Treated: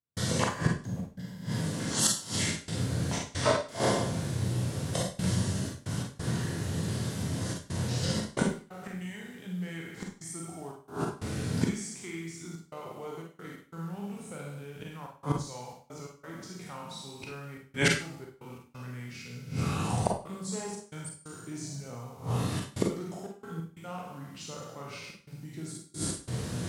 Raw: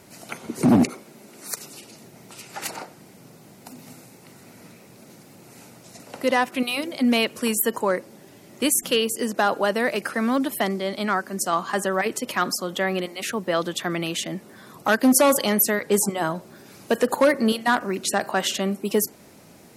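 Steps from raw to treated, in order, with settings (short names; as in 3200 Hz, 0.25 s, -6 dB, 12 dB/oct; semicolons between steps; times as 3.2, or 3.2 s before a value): spectral trails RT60 0.70 s; bell 140 Hz +12 dB 1.5 oct; notches 50/100/150/200/250/300/350/400 Hz; in parallel at +2 dB: compressor 8:1, threshold -24 dBFS, peak gain reduction 18.5 dB; on the sum: flipped gate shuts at -11 dBFS, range -27 dB; added noise white -67 dBFS; step gate ".xxx.x.xxxxxxxx" 121 bpm -60 dB; speed mistake 45 rpm record played at 33 rpm; Schroeder reverb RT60 0.37 s, combs from 33 ms, DRR 1 dB; gain -1 dB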